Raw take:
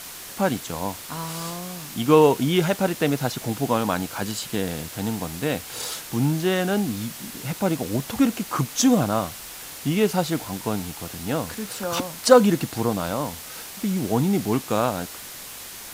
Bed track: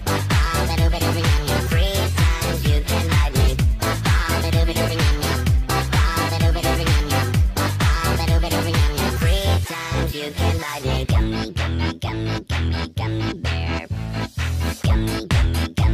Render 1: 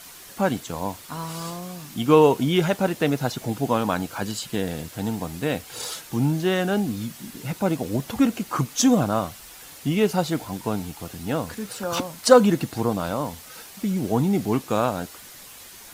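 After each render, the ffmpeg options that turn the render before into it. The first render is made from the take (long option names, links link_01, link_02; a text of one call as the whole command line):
ffmpeg -i in.wav -af "afftdn=noise_reduction=7:noise_floor=-39" out.wav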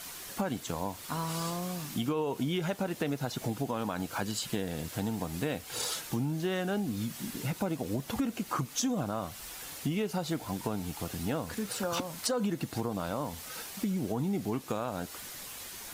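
ffmpeg -i in.wav -af "alimiter=limit=-12.5dB:level=0:latency=1:release=71,acompressor=threshold=-30dB:ratio=4" out.wav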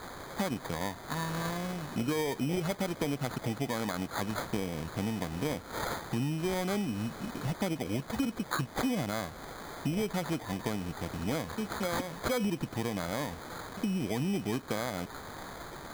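ffmpeg -i in.wav -af "acrusher=samples=16:mix=1:aa=0.000001" out.wav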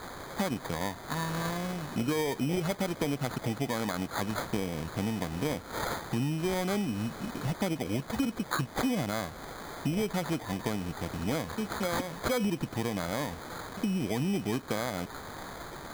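ffmpeg -i in.wav -af "volume=1.5dB" out.wav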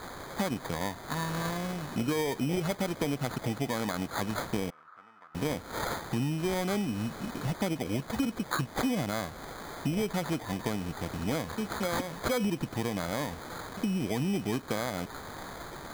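ffmpeg -i in.wav -filter_complex "[0:a]asettb=1/sr,asplit=3[link_01][link_02][link_03];[link_01]atrim=end=4.704[link_04];[link_02]atrim=start=4.7:end=5.35,asetpts=PTS-STARTPTS,afade=type=in:duration=0.004:curve=qsin,afade=type=out:start_time=0.646:duration=0.004:curve=qsin,bandpass=frequency=1300:width_type=q:width=9.6[link_05];[link_03]atrim=start=5.346[link_06];[link_04][link_05]acrossfade=duration=0.004:curve1=hsin:curve2=qsin[link_07];[link_07][link_06]acrossfade=duration=0.004:curve1=qsin:curve2=hsin" out.wav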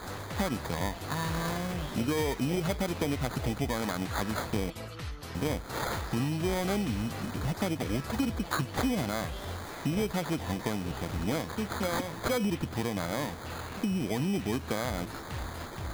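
ffmpeg -i in.wav -i bed.wav -filter_complex "[1:a]volume=-21.5dB[link_01];[0:a][link_01]amix=inputs=2:normalize=0" out.wav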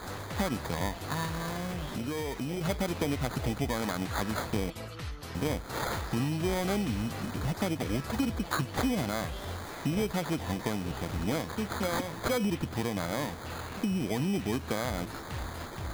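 ffmpeg -i in.wav -filter_complex "[0:a]asettb=1/sr,asplit=3[link_01][link_02][link_03];[link_01]atrim=end=1.254[link_04];[link_02]atrim=start=1.25:end=2.61,asetpts=PTS-STARTPTS,afade=type=in:duration=0.004:curve=qsin,afade=type=out:start_time=1.356:duration=0.004:curve=qsin,acompressor=threshold=-31dB:ratio=3:attack=3.2:release=140:knee=1:detection=peak[link_05];[link_03]atrim=start=2.606[link_06];[link_04][link_05]acrossfade=duration=0.004:curve1=hsin:curve2=qsin[link_07];[link_07][link_06]acrossfade=duration=0.004:curve1=qsin:curve2=hsin" out.wav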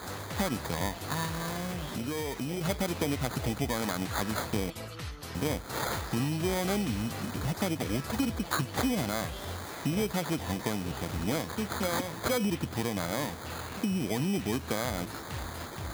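ffmpeg -i in.wav -af "highpass=56,highshelf=frequency=4700:gain=4.5" out.wav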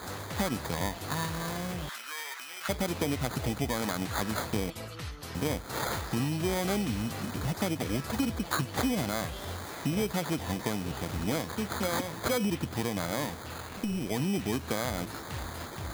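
ffmpeg -i in.wav -filter_complex "[0:a]asettb=1/sr,asplit=3[link_01][link_02][link_03];[link_01]atrim=end=1.894[link_04];[link_02]atrim=start=1.89:end=2.69,asetpts=PTS-STARTPTS,afade=type=in:duration=0.004:curve=qsin,afade=type=out:start_time=0.796:duration=0.004:curve=qsin,highpass=frequency=1400:width_type=q:width=2[link_05];[link_03]atrim=start=2.686[link_06];[link_04][link_05]acrossfade=duration=0.004:curve1=hsin:curve2=qsin[link_07];[link_07][link_06]acrossfade=duration=0.004:curve1=qsin:curve2=hsin,asettb=1/sr,asplit=3[link_08][link_09][link_10];[link_08]atrim=end=13.424[link_11];[link_09]atrim=start=13.42:end=14.14,asetpts=PTS-STARTPTS,afade=type=in:duration=0.004:curve=qsin,afade=type=out:start_time=0.716:duration=0.004:curve=qsin,tremolo=f=210:d=0.462[link_12];[link_10]atrim=start=14.136[link_13];[link_11][link_12]acrossfade=duration=0.004:curve1=hsin:curve2=qsin[link_14];[link_14][link_13]acrossfade=duration=0.004:curve1=qsin:curve2=hsin" out.wav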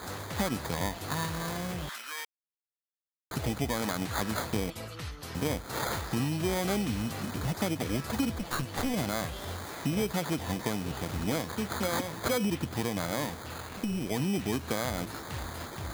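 ffmpeg -i in.wav -filter_complex "[0:a]asettb=1/sr,asplit=3[link_01][link_02][link_03];[link_01]atrim=end=8.374[link_04];[link_02]atrim=start=8.37:end=8.94,asetpts=PTS-STARTPTS,afade=type=in:duration=0.004:curve=qsin,afade=type=out:start_time=0.566:duration=0.004:curve=qsin,aeval=exprs='clip(val(0),-1,0.0188)':channel_layout=same[link_05];[link_03]atrim=start=8.936[link_06];[link_04][link_05]acrossfade=duration=0.004:curve1=hsin:curve2=qsin[link_07];[link_07][link_06]acrossfade=duration=0.004:curve1=qsin:curve2=hsin,asplit=3[link_08][link_09][link_10];[link_08]atrim=end=2.25,asetpts=PTS-STARTPTS,afade=type=out:start_time=2.246:duration=0.004:curve=hsin[link_11];[link_09]atrim=start=2.25:end=3.31,asetpts=PTS-STARTPTS,volume=0[link_12];[link_10]atrim=start=3.31,asetpts=PTS-STARTPTS,afade=type=in:duration=0.004:curve=hsin[link_13];[link_11][link_12][link_13]concat=n=3:v=0:a=1" out.wav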